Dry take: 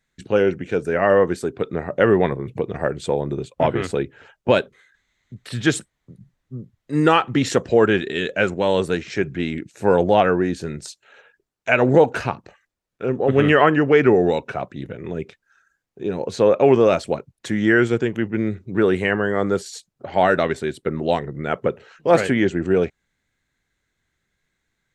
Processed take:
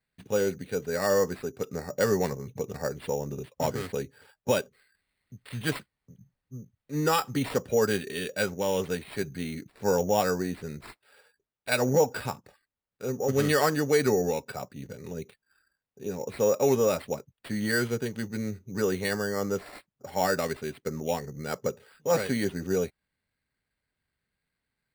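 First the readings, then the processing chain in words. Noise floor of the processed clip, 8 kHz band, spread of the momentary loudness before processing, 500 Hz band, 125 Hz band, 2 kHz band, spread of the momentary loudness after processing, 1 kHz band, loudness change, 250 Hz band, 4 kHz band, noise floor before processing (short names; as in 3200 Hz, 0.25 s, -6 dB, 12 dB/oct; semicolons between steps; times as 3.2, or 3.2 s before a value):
under -85 dBFS, +1.5 dB, 15 LU, -9.0 dB, -8.0 dB, -10.0 dB, 15 LU, -9.5 dB, -9.0 dB, -10.0 dB, -5.5 dB, -77 dBFS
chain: notch comb 340 Hz; sample-and-hold 7×; gain -8 dB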